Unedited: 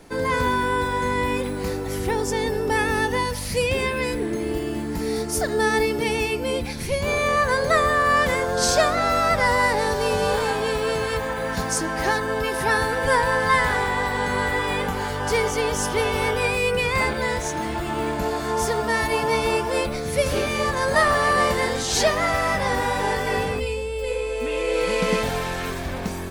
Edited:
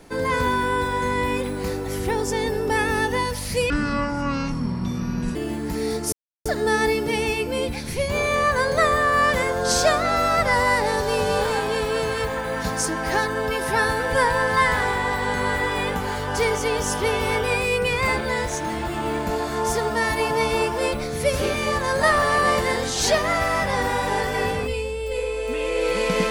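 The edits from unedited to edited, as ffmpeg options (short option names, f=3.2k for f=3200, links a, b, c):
-filter_complex "[0:a]asplit=4[a][b][c][d];[a]atrim=end=3.704[e];[b]atrim=start=3.7:end=4.61,asetpts=PTS-STARTPTS,asetrate=24255,aresample=44100,atrim=end_sample=72965,asetpts=PTS-STARTPTS[f];[c]atrim=start=4.606:end=5.38,asetpts=PTS-STARTPTS,afade=t=out:st=0.77:d=0.004:c=hsin,apad=pad_dur=0.33[g];[d]atrim=start=5.38,asetpts=PTS-STARTPTS,afade=t=in:d=0.004:c=hsin[h];[e][f]acrossfade=d=0.004:c1=hsin:c2=hsin[i];[g][h]concat=n=2:v=0:a=1[j];[i][j]acrossfade=d=0.004:c1=hsin:c2=hsin"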